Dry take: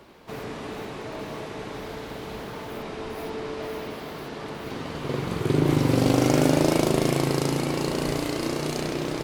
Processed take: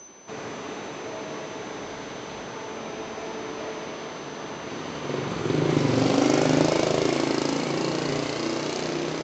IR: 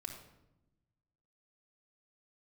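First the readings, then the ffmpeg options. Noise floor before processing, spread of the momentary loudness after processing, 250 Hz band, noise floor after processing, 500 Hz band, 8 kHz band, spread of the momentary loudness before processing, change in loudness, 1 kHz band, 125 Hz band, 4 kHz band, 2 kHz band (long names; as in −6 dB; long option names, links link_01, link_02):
−37 dBFS, 14 LU, −1.0 dB, −37 dBFS, 0.0 dB, 0.0 dB, 15 LU, −0.5 dB, +1.0 dB, −4.0 dB, +1.5 dB, +1.5 dB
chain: -filter_complex "[0:a]aeval=exprs='val(0)+0.00631*sin(2*PI*6100*n/s)':channel_layout=same,highpass=frequency=220:poles=1,aresample=16000,aresample=44100,acontrast=27,asplit=2[link_01][link_02];[link_02]aecho=0:1:76:0.531[link_03];[link_01][link_03]amix=inputs=2:normalize=0,volume=-4.5dB"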